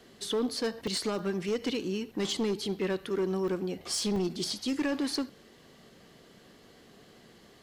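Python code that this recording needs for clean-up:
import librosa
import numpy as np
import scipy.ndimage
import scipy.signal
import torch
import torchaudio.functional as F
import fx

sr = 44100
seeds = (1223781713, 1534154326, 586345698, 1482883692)

y = fx.fix_declip(x, sr, threshold_db=-24.5)
y = fx.fix_interpolate(y, sr, at_s=(0.87, 1.19, 3.48, 4.16, 4.5), length_ms=2.5)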